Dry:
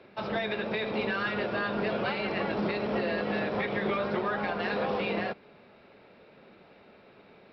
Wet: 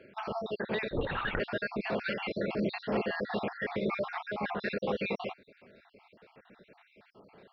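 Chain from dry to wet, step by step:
time-frequency cells dropped at random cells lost 54%
0:00.89–0:01.40: linear-prediction vocoder at 8 kHz whisper

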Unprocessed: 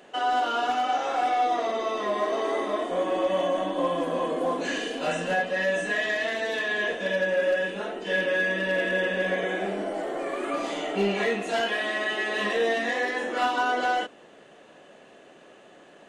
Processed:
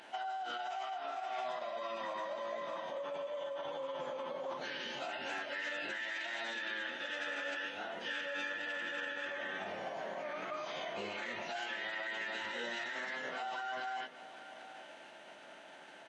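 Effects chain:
high-pass filter 610 Hz 12 dB per octave
brickwall limiter −24.5 dBFS, peak gain reduction 10 dB
downward compressor 4 to 1, threshold −41 dBFS, peak gain reduction 11 dB
phase-vocoder pitch shift with formants kept −11.5 semitones
single-tap delay 793 ms −14.5 dB
level +2.5 dB

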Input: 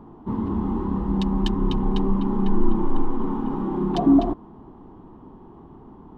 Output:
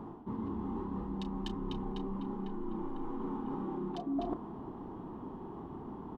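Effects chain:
low-shelf EQ 71 Hz −9.5 dB
reversed playback
downward compressor 8 to 1, threshold −36 dBFS, peak gain reduction 22.5 dB
reversed playback
double-tracking delay 33 ms −13 dB
level +1.5 dB

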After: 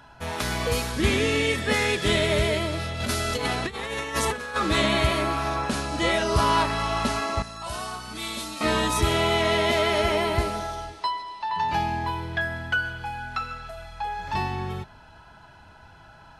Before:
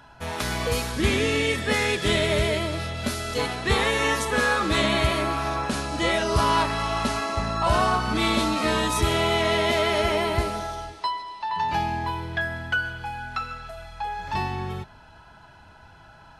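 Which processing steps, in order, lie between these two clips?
0:03.00–0:04.56: compressor whose output falls as the input rises −27 dBFS, ratio −0.5
0:07.42–0:08.61: first-order pre-emphasis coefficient 0.8

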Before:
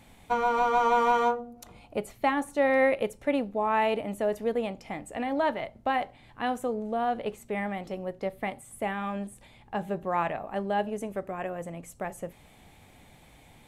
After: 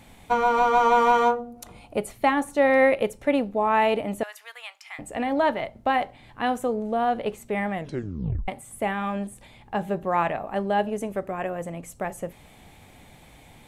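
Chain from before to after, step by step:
0:01.54–0:02.25: parametric band 9,600 Hz +5.5 dB 0.38 octaves
0:04.23–0:04.99: high-pass filter 1,200 Hz 24 dB per octave
0:07.73: tape stop 0.75 s
level +4.5 dB

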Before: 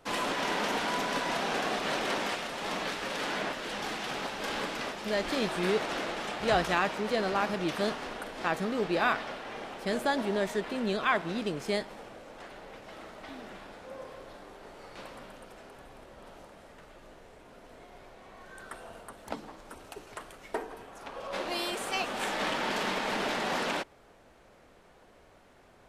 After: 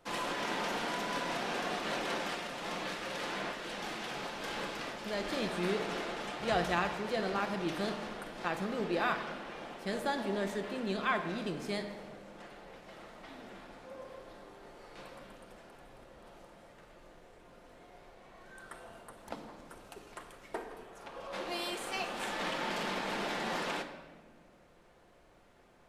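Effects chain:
rectangular room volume 1,500 cubic metres, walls mixed, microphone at 0.85 metres
level −5.5 dB

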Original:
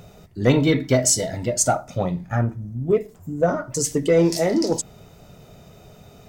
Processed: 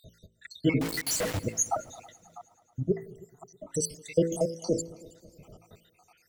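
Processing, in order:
time-frequency cells dropped at random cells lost 80%
hum removal 55.41 Hz, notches 10
0:00.81–0:01.39: log-companded quantiser 2 bits
0:02.12–0:02.75: output level in coarse steps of 20 dB
echo machine with several playback heads 107 ms, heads second and third, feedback 45%, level −23.5 dB
level −2.5 dB

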